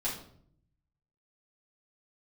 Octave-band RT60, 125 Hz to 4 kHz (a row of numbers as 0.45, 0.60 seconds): 1.2, 0.90, 0.70, 0.55, 0.45, 0.45 seconds